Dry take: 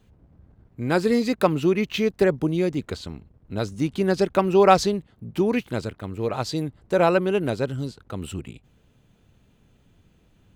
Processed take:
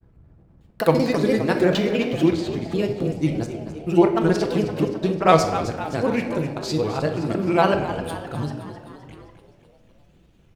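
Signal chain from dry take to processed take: slices in reverse order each 0.194 s, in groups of 4; grains, spray 33 ms, pitch spread up and down by 3 st; frequency-shifting echo 0.26 s, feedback 57%, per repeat +71 Hz, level -12 dB; shoebox room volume 590 m³, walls mixed, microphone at 0.73 m; gain +1.5 dB

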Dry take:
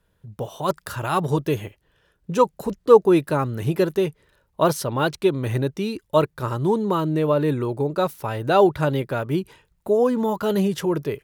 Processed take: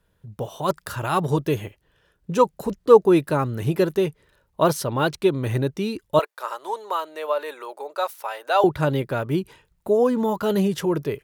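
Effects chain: 6.19–8.64 HPF 590 Hz 24 dB/oct

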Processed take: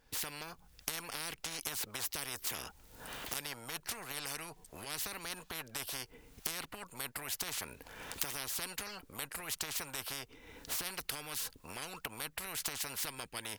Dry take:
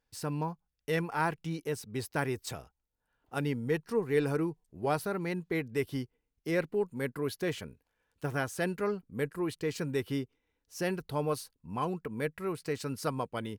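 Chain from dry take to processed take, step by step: recorder AGC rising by 39 dB/s; spectral compressor 10:1; gain +5 dB

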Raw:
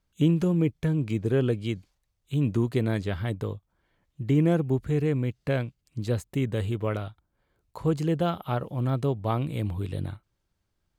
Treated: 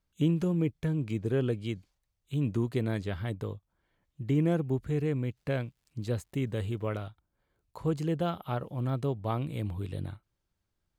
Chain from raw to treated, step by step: 5.36–7.07 crackle 320/s -59 dBFS; gain -4.5 dB

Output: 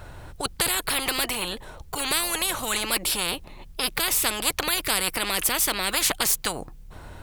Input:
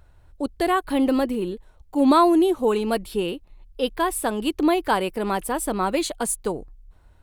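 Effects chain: spectral compressor 10:1; gain +2 dB

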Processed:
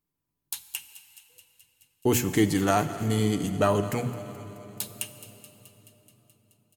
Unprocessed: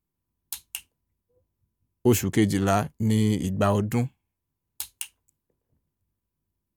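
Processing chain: low shelf 120 Hz -6 dB; notches 60/120/180/240 Hz; comb 6.8 ms, depth 36%; thinning echo 0.214 s, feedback 72%, high-pass 990 Hz, level -16 dB; on a send at -11.5 dB: reverb RT60 4.1 s, pre-delay 30 ms

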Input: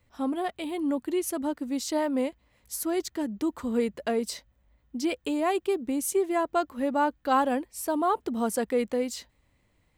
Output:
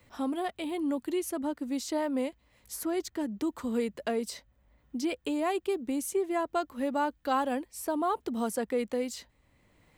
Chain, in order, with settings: three-band squash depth 40%; gain -3.5 dB

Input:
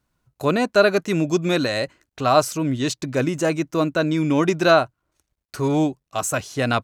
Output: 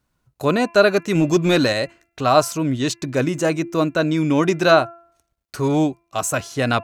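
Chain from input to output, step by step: 1.15–1.73 sample leveller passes 1; de-hum 340 Hz, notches 8; gain +1.5 dB

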